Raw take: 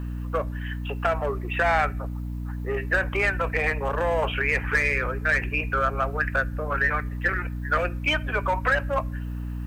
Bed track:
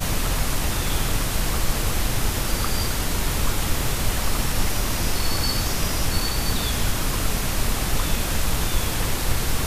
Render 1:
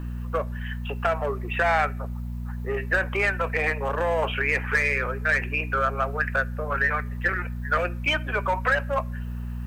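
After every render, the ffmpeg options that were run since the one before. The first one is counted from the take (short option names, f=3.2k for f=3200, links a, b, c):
-af "bandreject=f=50:t=h:w=6,bandreject=f=100:t=h:w=6,bandreject=f=150:t=h:w=6,bandreject=f=200:t=h:w=6,bandreject=f=250:t=h:w=6,bandreject=f=300:t=h:w=6"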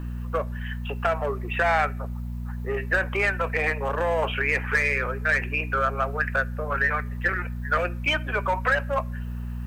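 -af anull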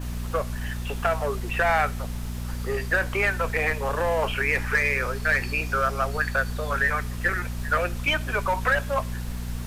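-filter_complex "[1:a]volume=-16.5dB[a];[0:a][a]amix=inputs=2:normalize=0"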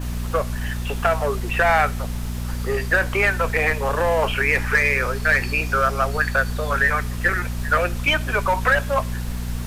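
-af "volume=4.5dB"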